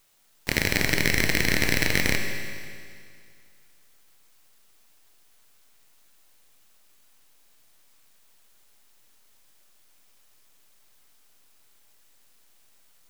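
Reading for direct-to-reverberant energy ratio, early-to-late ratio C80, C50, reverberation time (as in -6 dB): 3.5 dB, 6.0 dB, 5.0 dB, 2.2 s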